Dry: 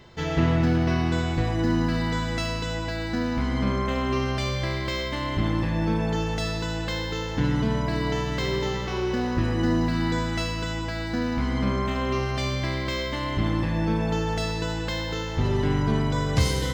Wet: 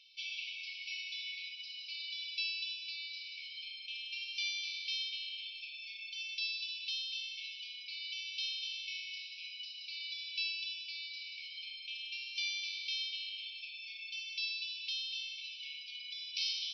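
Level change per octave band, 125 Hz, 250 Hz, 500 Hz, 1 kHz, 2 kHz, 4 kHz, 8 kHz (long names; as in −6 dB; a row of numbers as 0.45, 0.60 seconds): below −40 dB, below −40 dB, below −40 dB, below −40 dB, −9.5 dB, −2.0 dB, −11.5 dB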